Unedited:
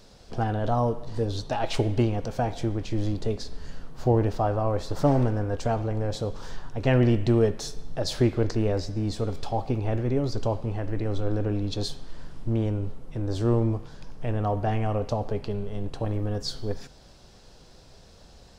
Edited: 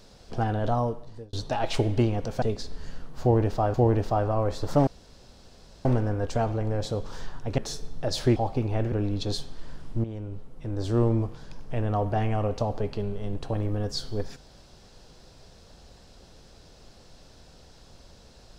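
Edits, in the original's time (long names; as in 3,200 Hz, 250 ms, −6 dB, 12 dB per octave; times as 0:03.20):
0:00.68–0:01.33: fade out
0:02.42–0:03.23: remove
0:04.02–0:04.55: repeat, 2 plays
0:05.15: splice in room tone 0.98 s
0:06.88–0:07.52: remove
0:08.30–0:09.49: remove
0:10.05–0:11.43: remove
0:12.55–0:13.51: fade in, from −12.5 dB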